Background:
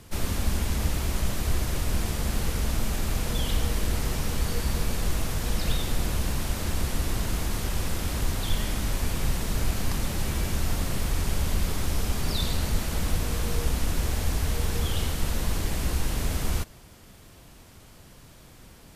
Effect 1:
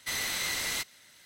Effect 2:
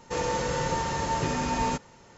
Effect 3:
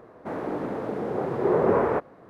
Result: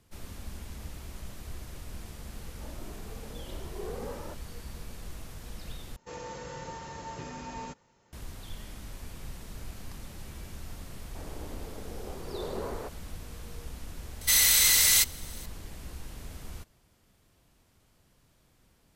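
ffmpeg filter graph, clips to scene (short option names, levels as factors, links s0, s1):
-filter_complex "[3:a]asplit=2[s0][s1];[0:a]volume=0.168[s2];[s0]asplit=2[s3][s4];[s4]adelay=2.2,afreqshift=1.3[s5];[s3][s5]amix=inputs=2:normalize=1[s6];[1:a]crystalizer=i=5.5:c=0[s7];[s2]asplit=2[s8][s9];[s8]atrim=end=5.964[s10];[2:a]atrim=end=2.17,asetpts=PTS-STARTPTS,volume=0.224[s11];[s9]atrim=start=8.126[s12];[s6]atrim=end=2.29,asetpts=PTS-STARTPTS,volume=0.158,afade=t=in:d=0.004:c=hsin,afade=t=out:st=2.286:d=0.004:c=hsin,adelay=2340[s13];[s1]atrim=end=2.29,asetpts=PTS-STARTPTS,volume=0.168,afade=t=in:d=0.004:c=hsin,afade=t=out:st=2.286:d=0.004:c=hsin,adelay=10890[s14];[s7]atrim=end=1.25,asetpts=PTS-STARTPTS,volume=0.794,afade=t=in:d=0.004:c=hsin,afade=t=out:st=1.246:d=0.004:c=hsin,adelay=14210[s15];[s10][s11]acrossfade=d=0.004:c1=hsin:c2=hsin[s16];[s16][s12]acrossfade=d=0.004:c1=hsin:c2=hsin[s17];[s17][s13][s14][s15]amix=inputs=4:normalize=0"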